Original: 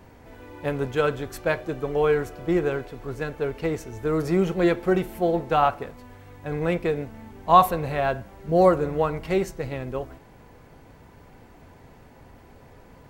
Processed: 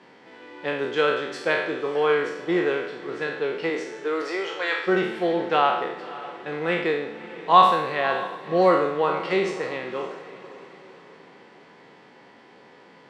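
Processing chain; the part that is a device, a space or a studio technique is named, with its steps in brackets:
peak hold with a decay on every bin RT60 0.77 s
0:03.69–0:04.86: high-pass filter 190 Hz → 790 Hz 24 dB per octave
television speaker (loudspeaker in its box 200–6,900 Hz, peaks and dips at 250 Hz −6 dB, 650 Hz −5 dB, 1,900 Hz +5 dB, 3,200 Hz +6 dB, 4,600 Hz +3 dB, 6,600 Hz −6 dB)
feedback delay with all-pass diffusion 563 ms, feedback 44%, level −15.5 dB

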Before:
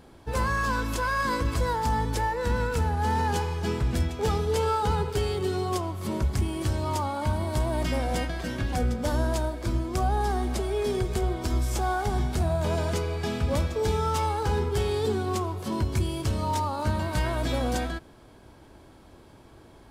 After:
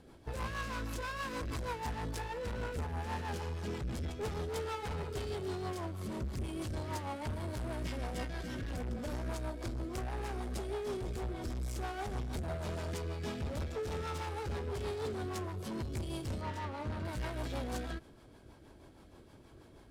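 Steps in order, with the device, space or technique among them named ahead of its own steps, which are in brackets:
0:16.41–0:17.05: low-pass filter 3,100 Hz 6 dB per octave
overdriven rotary cabinet (tube saturation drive 31 dB, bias 0.35; rotating-speaker cabinet horn 6.3 Hz)
level −2.5 dB

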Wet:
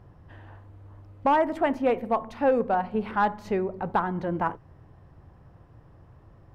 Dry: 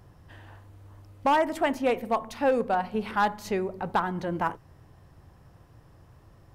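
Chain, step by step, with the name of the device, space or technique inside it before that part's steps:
through cloth (high-shelf EQ 3,700 Hz −18 dB)
level +2 dB

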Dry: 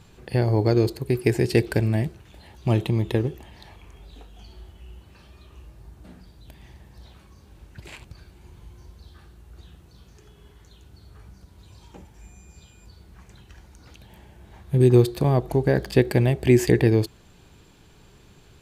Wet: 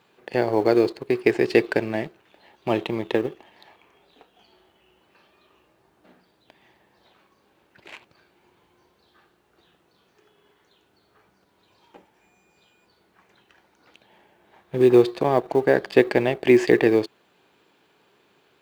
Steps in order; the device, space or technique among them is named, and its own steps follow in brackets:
phone line with mismatched companding (band-pass filter 360–3,400 Hz; mu-law and A-law mismatch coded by A)
level +6 dB

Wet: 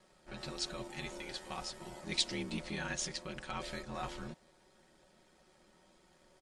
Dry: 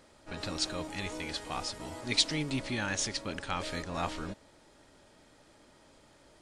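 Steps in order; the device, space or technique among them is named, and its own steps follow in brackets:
ring-modulated robot voice (ring modulation 40 Hz; comb filter 5.4 ms)
level −4.5 dB

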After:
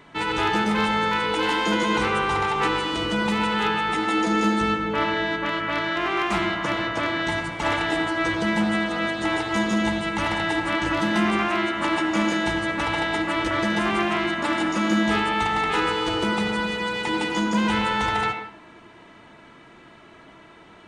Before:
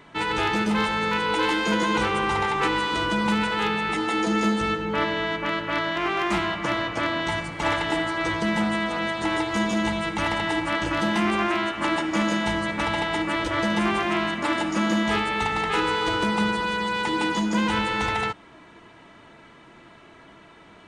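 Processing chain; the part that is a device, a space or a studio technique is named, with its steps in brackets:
filtered reverb send (on a send: high-pass filter 180 Hz + low-pass filter 3,900 Hz 12 dB per octave + convolution reverb RT60 0.60 s, pre-delay 83 ms, DRR 6 dB)

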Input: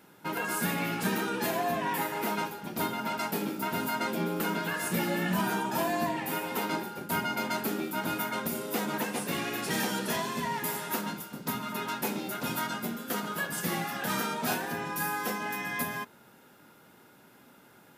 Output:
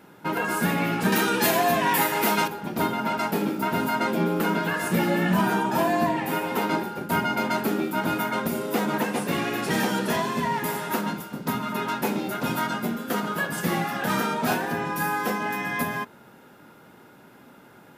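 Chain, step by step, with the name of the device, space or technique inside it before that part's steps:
0:01.12–0:02.48: high-shelf EQ 2,400 Hz +12 dB
behind a face mask (high-shelf EQ 2,900 Hz −8 dB)
level +7.5 dB

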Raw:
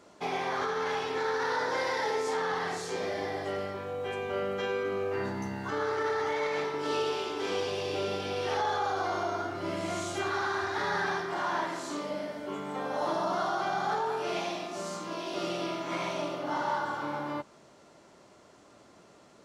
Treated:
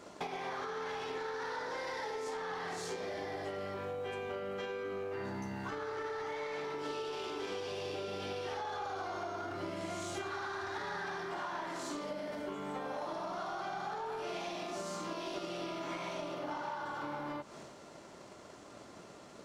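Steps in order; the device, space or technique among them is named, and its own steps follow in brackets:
drum-bus smash (transient designer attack +9 dB, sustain +5 dB; downward compressor, threshold −39 dBFS, peak gain reduction 15 dB; soft clipping −34.5 dBFS, distortion −19 dB)
level +3 dB

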